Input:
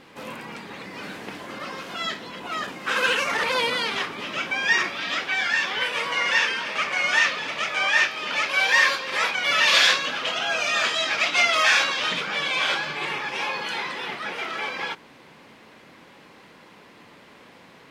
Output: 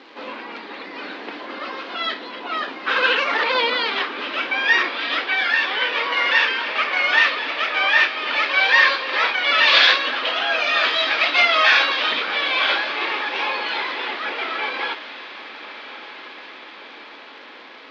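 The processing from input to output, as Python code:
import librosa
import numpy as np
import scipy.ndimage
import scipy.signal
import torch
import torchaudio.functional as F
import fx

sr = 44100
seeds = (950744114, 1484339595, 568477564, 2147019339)

y = fx.dmg_crackle(x, sr, seeds[0], per_s=500.0, level_db=-38.0)
y = scipy.signal.sosfilt(scipy.signal.ellip(3, 1.0, 40, [270.0, 4300.0], 'bandpass', fs=sr, output='sos'), y)
y = fx.echo_diffused(y, sr, ms=1264, feedback_pct=59, wet_db=-15)
y = y * 10.0 ** (4.5 / 20.0)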